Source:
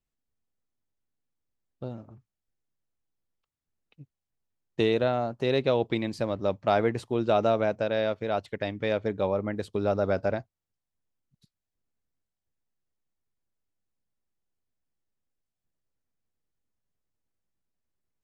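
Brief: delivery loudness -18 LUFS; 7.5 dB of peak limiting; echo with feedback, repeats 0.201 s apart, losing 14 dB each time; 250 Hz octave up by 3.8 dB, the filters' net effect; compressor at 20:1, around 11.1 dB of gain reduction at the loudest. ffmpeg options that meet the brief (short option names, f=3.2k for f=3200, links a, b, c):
-af "equalizer=f=250:t=o:g=5,acompressor=threshold=-28dB:ratio=20,alimiter=limit=-24dB:level=0:latency=1,aecho=1:1:201|402:0.2|0.0399,volume=18.5dB"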